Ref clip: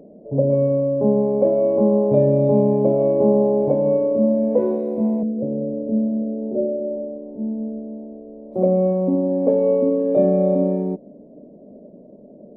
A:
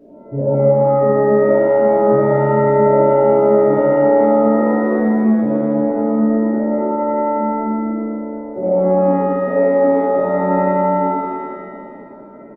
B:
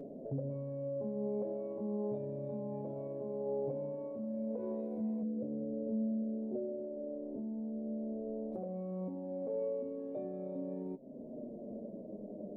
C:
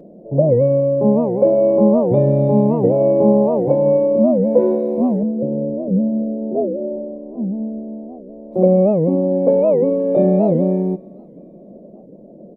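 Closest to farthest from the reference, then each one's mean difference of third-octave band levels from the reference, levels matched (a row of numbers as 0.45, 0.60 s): C, B, A; 1.5, 3.0, 6.0 dB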